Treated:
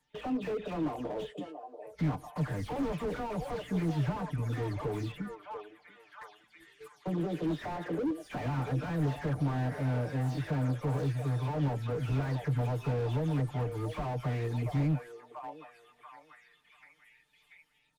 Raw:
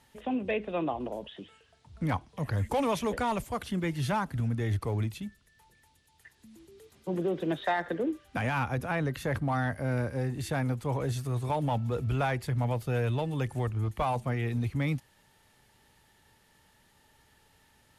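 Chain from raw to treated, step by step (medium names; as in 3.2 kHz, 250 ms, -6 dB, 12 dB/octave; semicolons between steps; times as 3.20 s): delay that grows with frequency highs early, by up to 199 ms; comb 6.7 ms, depth 89%; in parallel at +2.5 dB: compression 6:1, threshold -38 dBFS, peak gain reduction 16.5 dB; on the sum: gate -41 dBFS, range -19 dB; on a send: repeats whose band climbs or falls 688 ms, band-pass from 550 Hz, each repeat 0.7 oct, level -9 dB; on the sum: slew-rate limiter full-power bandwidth 23 Hz; trim -5 dB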